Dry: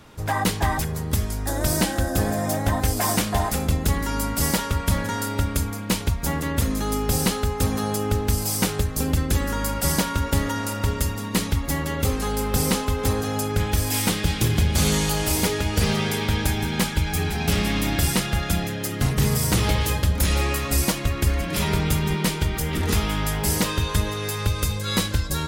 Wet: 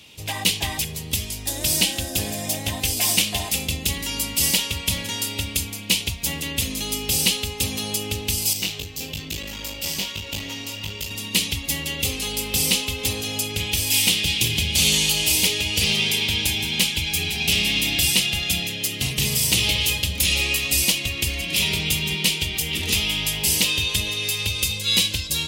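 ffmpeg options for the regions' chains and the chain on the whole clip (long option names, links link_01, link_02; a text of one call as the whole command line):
ffmpeg -i in.wav -filter_complex "[0:a]asettb=1/sr,asplit=3[link_01][link_02][link_03];[link_01]atrim=end=8.534[link_04];[link_02]atrim=start=8.53:end=11.11,asetpts=PTS-STARTPTS,afade=type=in:duration=0.004:curve=qsin,afade=type=out:start_time=2.576:duration=0.004:curve=qsin,flanger=delay=19.5:depth=2.3:speed=1.2,equalizer=frequency=9800:width_type=o:width=0.37:gain=-14,aeval=exprs='clip(val(0),-1,0.0335)':channel_layout=same[link_05];[link_03]atrim=start=11.106[link_06];[link_04][link_05]acrossfade=duration=0.004:curve1=hsin:curve2=qsin[link_07];[link_07][link_06]acrossfade=duration=0.004:curve1=qsin:curve2=hsin,highpass=59,highshelf=frequency=2000:width_type=q:width=3:gain=11,volume=-6dB" out.wav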